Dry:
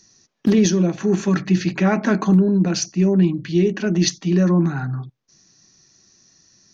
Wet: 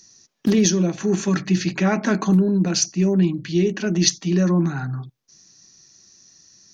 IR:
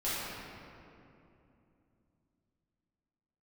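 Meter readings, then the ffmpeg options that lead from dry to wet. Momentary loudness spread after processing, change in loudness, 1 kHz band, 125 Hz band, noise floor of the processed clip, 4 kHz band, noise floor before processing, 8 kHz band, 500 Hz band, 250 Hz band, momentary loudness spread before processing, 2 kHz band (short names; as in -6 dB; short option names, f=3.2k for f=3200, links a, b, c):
5 LU, -1.5 dB, -1.5 dB, -2.0 dB, -66 dBFS, +2.5 dB, -68 dBFS, n/a, -2.0 dB, -2.0 dB, 5 LU, -0.5 dB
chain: -af "highshelf=f=4.5k:g=9.5,volume=-2dB"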